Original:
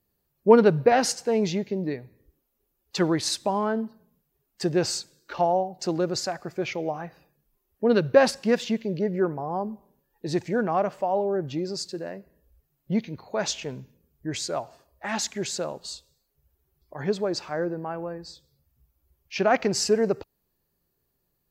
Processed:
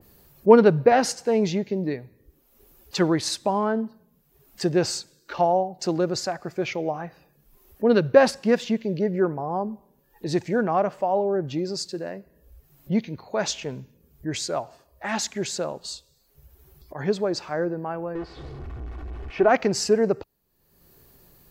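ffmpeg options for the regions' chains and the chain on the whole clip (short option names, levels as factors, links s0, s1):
-filter_complex "[0:a]asettb=1/sr,asplit=3[s0][s1][s2];[s0]atrim=end=18.154[s3];[s1]atrim=start=18.15:end=19.49,asetpts=PTS-STARTPTS,afade=t=in:d=0.004:c=qsin,afade=t=out:st=1.336:d=0.004:c=qsin,aeval=exprs='val(0)+0.5*0.0266*sgn(val(0))':c=same,lowpass=1500,aecho=1:1:2.7:0.55,atrim=end_sample=59094[s4];[s2]atrim=start=19.486[s5];[s3][s4]acrossfade=d=0.004:c1=hsin:c2=qsin[s6];[s6][s5]acrossfade=d=0.004:c1=qsin:c2=hsin,acompressor=mode=upward:threshold=0.01:ratio=2.5,adynamicequalizer=threshold=0.0126:dfrequency=2100:dqfactor=0.7:tfrequency=2100:tqfactor=0.7:attack=5:release=100:ratio=0.375:range=2.5:mode=cutabove:tftype=highshelf,volume=1.26"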